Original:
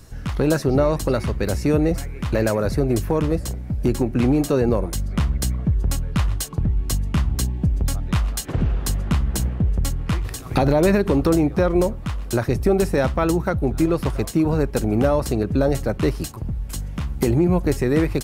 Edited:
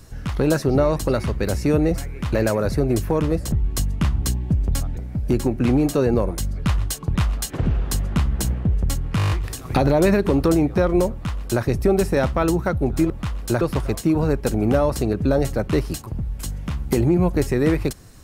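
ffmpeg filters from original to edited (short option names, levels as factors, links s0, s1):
-filter_complex "[0:a]asplit=14[s0][s1][s2][s3][s4][s5][s6][s7][s8][s9][s10][s11][s12][s13];[s0]atrim=end=3.522[s14];[s1]atrim=start=6.648:end=8.102[s15];[s2]atrim=start=3.518:end=5.142[s16];[s3]atrim=start=6.088:end=6.652[s17];[s4]atrim=start=8.098:end=10.142[s18];[s5]atrim=start=10.118:end=10.142[s19];[s6]atrim=start=10.118:end=10.142[s20];[s7]atrim=start=10.118:end=10.142[s21];[s8]atrim=start=10.118:end=10.142[s22];[s9]atrim=start=10.118:end=10.142[s23];[s10]atrim=start=10.118:end=10.142[s24];[s11]atrim=start=10.118:end=13.912[s25];[s12]atrim=start=11.928:end=12.442[s26];[s13]atrim=start=13.908[s27];[s14][s15]acrossfade=d=0.004:c1=hsin:c2=hsin[s28];[s28][s16]acrossfade=d=0.004:c1=hsin:c2=hsin[s29];[s29][s17]acrossfade=d=0.004:c1=hsin:c2=hsin[s30];[s30][s18]acrossfade=d=0.004:c1=hsin:c2=hsin[s31];[s31][s19]acrossfade=d=0.004:c1=hsin:c2=hsin[s32];[s32][s20]acrossfade=d=0.004:c1=hsin:c2=hsin[s33];[s33][s21]acrossfade=d=0.004:c1=hsin:c2=hsin[s34];[s34][s22]acrossfade=d=0.004:c1=hsin:c2=hsin[s35];[s35][s23]acrossfade=d=0.004:c1=hsin:c2=hsin[s36];[s36][s24]acrossfade=d=0.004:c1=hsin:c2=hsin[s37];[s37][s25]acrossfade=d=0.004:c1=hsin:c2=hsin[s38];[s38][s26]acrossfade=d=0.004:c1=hsin:c2=hsin[s39];[s39][s27]acrossfade=d=0.004:c1=hsin:c2=hsin"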